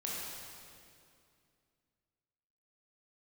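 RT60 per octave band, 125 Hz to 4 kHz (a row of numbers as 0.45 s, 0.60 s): 2.9 s, 2.9 s, 2.5 s, 2.3 s, 2.2 s, 2.0 s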